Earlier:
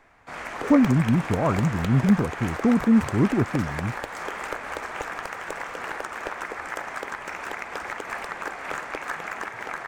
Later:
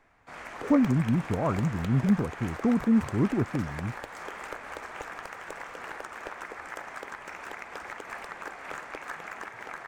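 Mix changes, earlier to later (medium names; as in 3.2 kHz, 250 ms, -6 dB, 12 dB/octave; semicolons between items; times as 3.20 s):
speech -4.5 dB; background -7.0 dB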